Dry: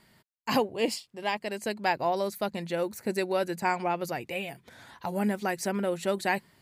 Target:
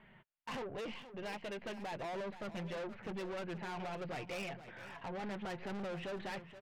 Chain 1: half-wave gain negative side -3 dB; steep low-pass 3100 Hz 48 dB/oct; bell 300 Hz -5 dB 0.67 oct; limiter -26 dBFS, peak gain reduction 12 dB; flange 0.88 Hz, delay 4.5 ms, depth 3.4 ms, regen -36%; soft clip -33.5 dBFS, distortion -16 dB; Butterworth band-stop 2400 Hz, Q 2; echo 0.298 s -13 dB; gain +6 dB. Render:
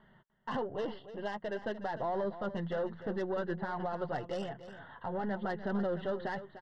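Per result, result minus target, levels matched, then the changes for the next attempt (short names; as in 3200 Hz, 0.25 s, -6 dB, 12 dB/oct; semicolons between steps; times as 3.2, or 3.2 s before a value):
echo 0.177 s early; soft clip: distortion -10 dB; 2000 Hz band -3.5 dB
change: echo 0.475 s -13 dB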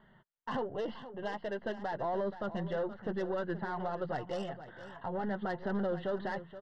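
soft clip: distortion -10 dB; 2000 Hz band -3.5 dB
change: soft clip -45.5 dBFS, distortion -6 dB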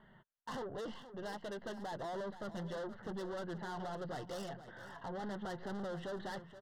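2000 Hz band -2.5 dB
remove: Butterworth band-stop 2400 Hz, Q 2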